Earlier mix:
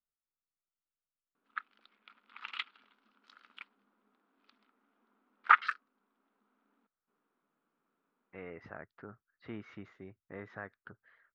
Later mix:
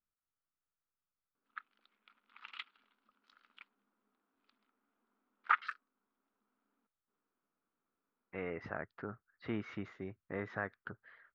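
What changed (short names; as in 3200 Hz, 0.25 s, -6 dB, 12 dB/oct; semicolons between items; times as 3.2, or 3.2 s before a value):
speech +5.5 dB; background -7.5 dB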